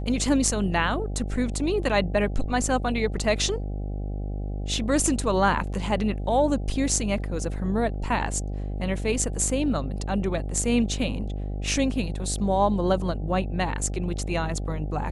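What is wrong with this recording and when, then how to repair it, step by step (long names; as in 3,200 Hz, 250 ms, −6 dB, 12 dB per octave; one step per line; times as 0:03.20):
mains buzz 50 Hz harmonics 16 −30 dBFS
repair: hum removal 50 Hz, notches 16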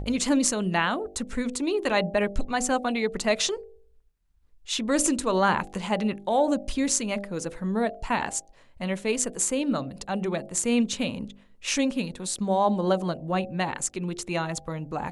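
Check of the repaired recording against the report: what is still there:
none of them is left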